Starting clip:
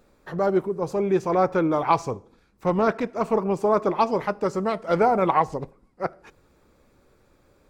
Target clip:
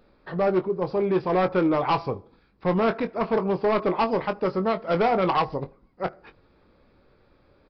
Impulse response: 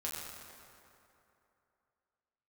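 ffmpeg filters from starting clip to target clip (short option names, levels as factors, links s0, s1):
-filter_complex "[0:a]aresample=11025,asoftclip=type=hard:threshold=0.133,aresample=44100,asplit=2[s0][s1];[s1]adelay=22,volume=0.316[s2];[s0][s2]amix=inputs=2:normalize=0"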